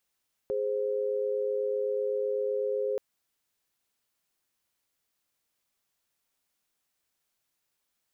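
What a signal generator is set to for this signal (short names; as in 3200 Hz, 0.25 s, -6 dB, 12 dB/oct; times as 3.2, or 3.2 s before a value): chord G#4/C5 sine, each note -29.5 dBFS 2.48 s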